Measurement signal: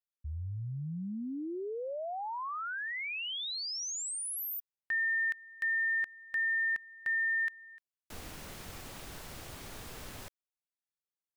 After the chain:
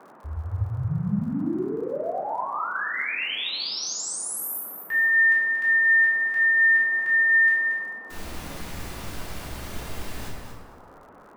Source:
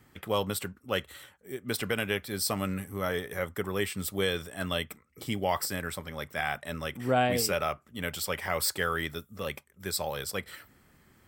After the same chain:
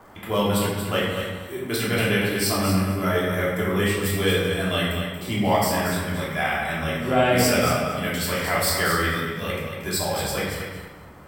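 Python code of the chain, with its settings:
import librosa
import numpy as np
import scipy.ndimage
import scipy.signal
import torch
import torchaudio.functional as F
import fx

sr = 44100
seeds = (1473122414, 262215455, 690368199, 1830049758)

p1 = fx.room_shoebox(x, sr, seeds[0], volume_m3=490.0, walls='mixed', distance_m=3.1)
p2 = fx.dmg_noise_band(p1, sr, seeds[1], low_hz=180.0, high_hz=1300.0, level_db=-50.0)
p3 = p2 + fx.echo_feedback(p2, sr, ms=231, feedback_pct=18, wet_db=-7.5, dry=0)
y = fx.dmg_crackle(p3, sr, seeds[2], per_s=73.0, level_db=-46.0)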